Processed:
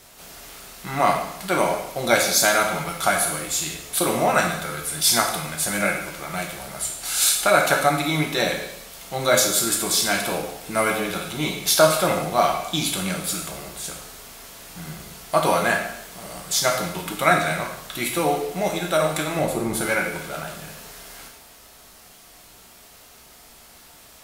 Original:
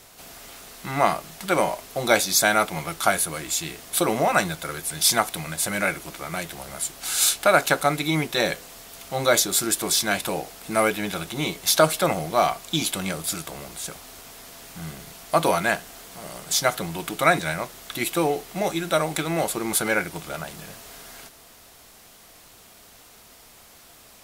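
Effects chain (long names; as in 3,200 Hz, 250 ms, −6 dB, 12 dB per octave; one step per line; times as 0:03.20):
0:19.39–0:19.81: tilt shelving filter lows +6.5 dB, about 670 Hz
dense smooth reverb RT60 0.79 s, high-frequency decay 1×, DRR 0.5 dB
level −1 dB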